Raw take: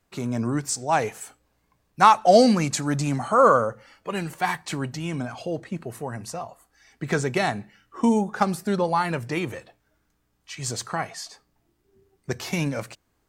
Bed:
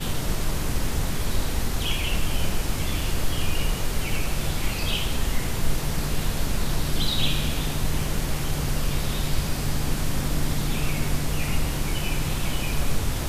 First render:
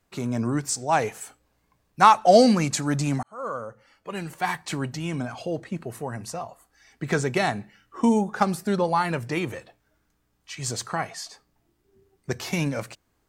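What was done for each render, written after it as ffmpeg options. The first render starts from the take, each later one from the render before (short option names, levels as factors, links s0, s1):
-filter_complex "[0:a]asplit=2[s0][s1];[s0]atrim=end=3.23,asetpts=PTS-STARTPTS,afade=t=out:st=3.226:d=0.004:c=hsin[s2];[s1]atrim=start=3.23,asetpts=PTS-STARTPTS,afade=t=in:d=1.48[s3];[s2][s3]concat=n=2:v=0:a=1"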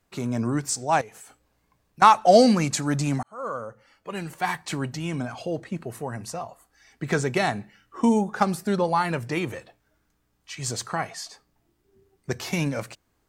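-filter_complex "[0:a]asettb=1/sr,asplit=3[s0][s1][s2];[s0]atrim=end=1.014[s3];[s1]atrim=start=1.01:end=2.02,asetpts=PTS-STARTPTS,afade=t=in:d=0.004:c=qsin,afade=t=out:st=1.006:d=0.004:c=qsin,acompressor=threshold=0.00708:ratio=4:attack=3.2:release=140:knee=1:detection=peak[s4];[s2]atrim=start=2.016[s5];[s3][s4]acrossfade=d=0.004:c1=hsin:c2=qsin[s6];[s6][s5]acrossfade=d=0.004:c1=qsin:c2=hsin"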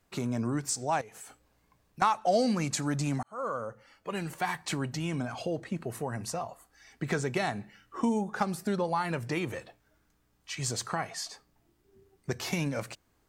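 -af "acompressor=threshold=0.0282:ratio=2"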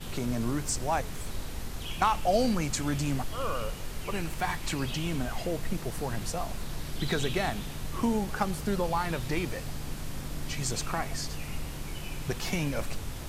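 -filter_complex "[1:a]volume=0.266[s0];[0:a][s0]amix=inputs=2:normalize=0"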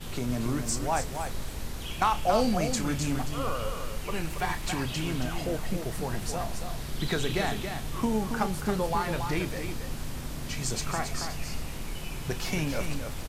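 -filter_complex "[0:a]asplit=2[s0][s1];[s1]adelay=32,volume=0.251[s2];[s0][s2]amix=inputs=2:normalize=0,aecho=1:1:276:0.447"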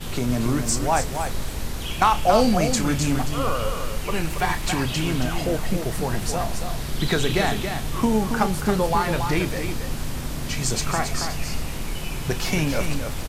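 -af "volume=2.24"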